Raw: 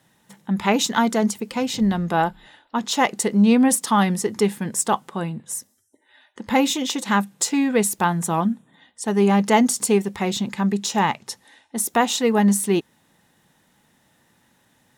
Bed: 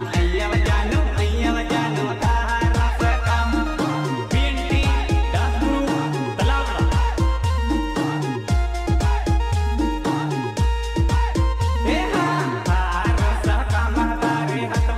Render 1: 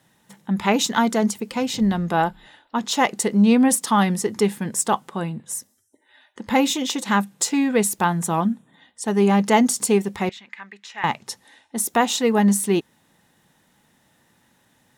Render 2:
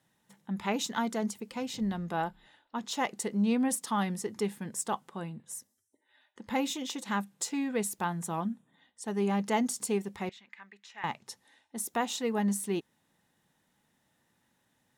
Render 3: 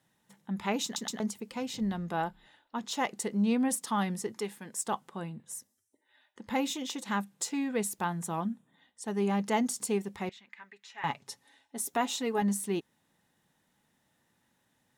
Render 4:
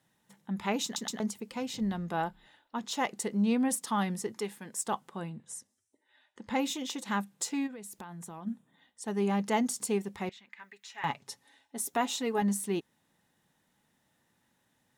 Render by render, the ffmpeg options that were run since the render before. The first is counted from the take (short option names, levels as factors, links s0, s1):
-filter_complex "[0:a]asettb=1/sr,asplit=3[s0][s1][s2];[s0]atrim=end=10.294[s3];[s1]atrim=start=10.29:end=11.04,asetpts=PTS-STARTPTS,afade=t=in:d=0.004:c=qsin,afade=t=out:st=0.746:d=0.004:c=qsin,bandpass=f=2000:t=q:w=2.8[s4];[s2]atrim=start=11.036[s5];[s3][s4]acrossfade=d=0.004:c1=hsin:c2=qsin[s6];[s6][s5]acrossfade=d=0.004:c1=qsin:c2=hsin"
-af "volume=0.251"
-filter_complex "[0:a]asettb=1/sr,asplit=3[s0][s1][s2];[s0]atrim=end=4.324[s3];[s1]atrim=start=4.32:end=4.87,asetpts=PTS-STARTPTS,afade=t=in:d=0.004:c=qsin,afade=t=out:st=0.546:d=0.004:c=qsin,highpass=f=450:p=1[s4];[s2]atrim=start=4.866[s5];[s3][s4]acrossfade=d=0.004:c1=hsin:c2=qsin[s6];[s6][s5]acrossfade=d=0.004:c1=qsin:c2=hsin,asettb=1/sr,asplit=3[s7][s8][s9];[s7]atrim=end=10.604[s10];[s8]atrim=start=10.6:end=12.42,asetpts=PTS-STARTPTS,afade=t=in:d=0.004:c=qsin,afade=t=out:st=1.816:d=0.004:c=qsin,aecho=1:1:7.2:0.54,atrim=end_sample=80262[s11];[s9]atrim=start=12.416[s12];[s10][s11]acrossfade=d=0.004:c1=hsin:c2=qsin[s13];[s13][s12]acrossfade=d=0.004:c1=qsin:c2=hsin,asplit=4[s14][s15][s16][s17];[s14]atrim=end=0.962[s18];[s15]atrim=start=0.838:end=0.962[s19];[s16]atrim=start=0.838:end=0.962[s20];[s17]atrim=start=1.198[s21];[s18][s19]acrossfade=d=0.004:c1=hsin:c2=hsin[s22];[s22][s20]acrossfade=d=0.004:c1=hsin:c2=hsin[s23];[s23][s21]acrossfade=d=0.004:c1=hsin:c2=hsin"
-filter_complex "[0:a]asettb=1/sr,asplit=3[s0][s1][s2];[s0]atrim=end=5.304[s3];[s1]atrim=start=5.3:end=6.59,asetpts=PTS-STARTPTS,afade=t=in:d=0.004:c=qsin,afade=t=out:st=1.286:d=0.004:c=qsin,lowpass=f=10000:w=0.5412,lowpass=f=10000:w=1.3066[s4];[s2]atrim=start=6.586[s5];[s3][s4]acrossfade=d=0.004:c1=hsin:c2=qsin[s6];[s6][s5]acrossfade=d=0.004:c1=qsin:c2=hsin,asplit=3[s7][s8][s9];[s7]afade=t=out:st=7.66:d=0.02[s10];[s8]acompressor=threshold=0.01:ratio=20:attack=3.2:release=140:knee=1:detection=peak,afade=t=in:st=7.66:d=0.02,afade=t=out:st=8.46:d=0.02[s11];[s9]afade=t=in:st=8.46:d=0.02[s12];[s10][s11][s12]amix=inputs=3:normalize=0,asettb=1/sr,asplit=3[s13][s14][s15];[s13]atrim=end=10.594[s16];[s14]atrim=start=10.59:end=11.05,asetpts=PTS-STARTPTS,afade=t=in:d=0.004:c=qsin,afade=t=out:st=0.456:d=0.004:c=qsin,highshelf=f=5700:g=9[s17];[s15]atrim=start=11.046[s18];[s16][s17]acrossfade=d=0.004:c1=hsin:c2=qsin[s19];[s19][s18]acrossfade=d=0.004:c1=qsin:c2=hsin"